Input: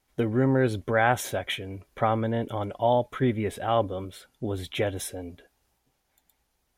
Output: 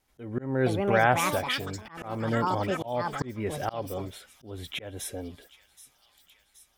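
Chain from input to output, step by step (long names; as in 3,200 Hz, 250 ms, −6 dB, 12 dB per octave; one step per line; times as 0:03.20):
delay with pitch and tempo change per echo 536 ms, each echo +7 semitones, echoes 2, each echo −6 dB
delay with a high-pass on its return 775 ms, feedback 66%, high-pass 3,700 Hz, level −16 dB
volume swells 308 ms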